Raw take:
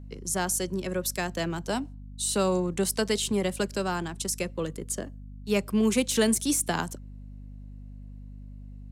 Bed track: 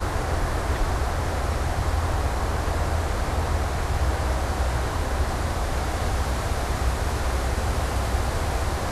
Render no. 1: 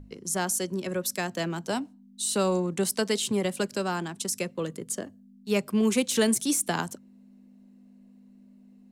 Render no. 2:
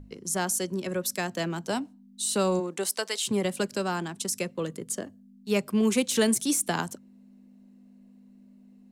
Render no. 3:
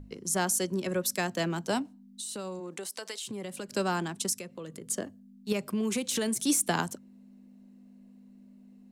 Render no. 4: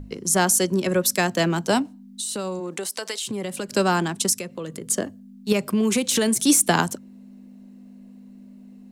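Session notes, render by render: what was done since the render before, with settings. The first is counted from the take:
notches 50/100/150 Hz
2.59–3.26 HPF 260 Hz -> 920 Hz
1.82–3.69 compressor, threshold -35 dBFS; 4.33–4.84 compressor 3:1, threshold -40 dBFS; 5.52–6.45 compressor, threshold -26 dBFS
gain +9 dB

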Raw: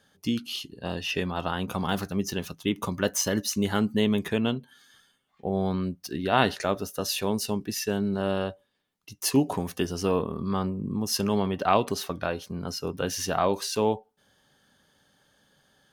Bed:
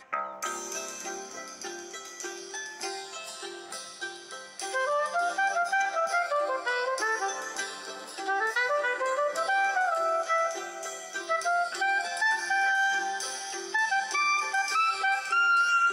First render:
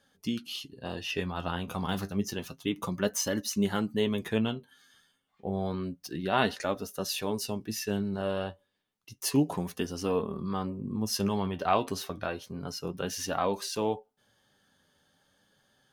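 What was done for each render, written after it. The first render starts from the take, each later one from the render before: flange 0.3 Hz, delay 3.4 ms, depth 9 ms, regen +53%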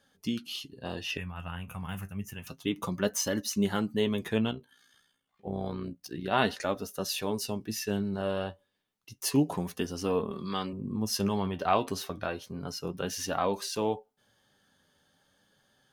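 1.17–2.47 EQ curve 130 Hz 0 dB, 330 Hz -16 dB, 2700 Hz -1 dB, 4100 Hz -25 dB, 7100 Hz -6 dB, 10000 Hz -1 dB; 4.51–6.32 AM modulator 60 Hz, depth 45%; 10.31–10.73 weighting filter D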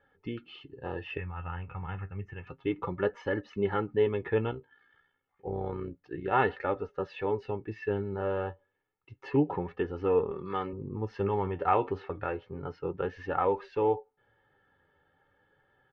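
LPF 2200 Hz 24 dB/oct; comb 2.3 ms, depth 69%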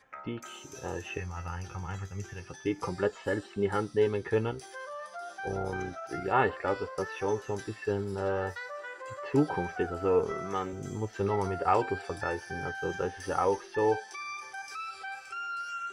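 add bed -13.5 dB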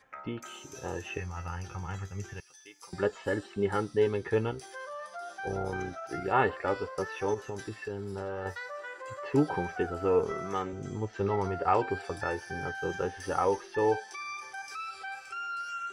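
2.4–2.93 differentiator; 7.34–8.46 compressor, threshold -32 dBFS; 10.62–11.91 air absorption 68 m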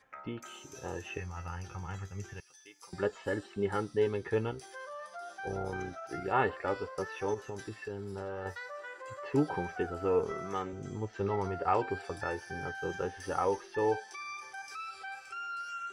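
gain -3 dB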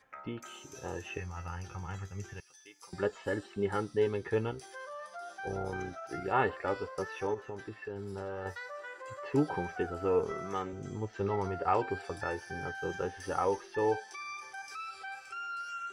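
7.27–7.96 tone controls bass -3 dB, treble -13 dB

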